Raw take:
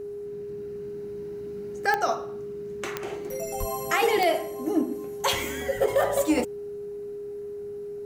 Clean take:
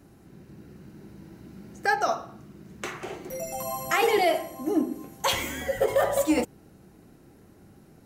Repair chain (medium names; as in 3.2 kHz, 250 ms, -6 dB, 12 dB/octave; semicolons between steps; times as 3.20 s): de-click; band-stop 410 Hz, Q 30; 3.59–3.71 s: high-pass 140 Hz 24 dB/octave